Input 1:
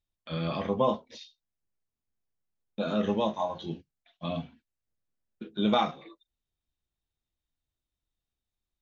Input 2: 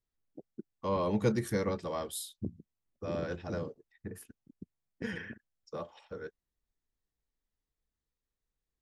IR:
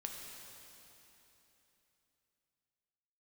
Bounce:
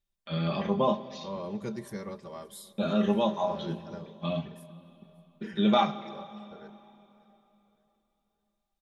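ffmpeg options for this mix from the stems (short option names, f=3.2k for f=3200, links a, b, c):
-filter_complex "[0:a]volume=-2.5dB,asplit=2[a][b];[b]volume=-7dB[c];[1:a]adelay=400,volume=-9dB,asplit=3[d][e][f];[e]volume=-16dB[g];[f]volume=-22.5dB[h];[2:a]atrim=start_sample=2205[i];[c][g]amix=inputs=2:normalize=0[j];[j][i]afir=irnorm=-1:irlink=0[k];[h]aecho=0:1:578|1156|1734|2312|2890|3468:1|0.4|0.16|0.064|0.0256|0.0102[l];[a][d][k][l]amix=inputs=4:normalize=0,aecho=1:1:5.1:0.58"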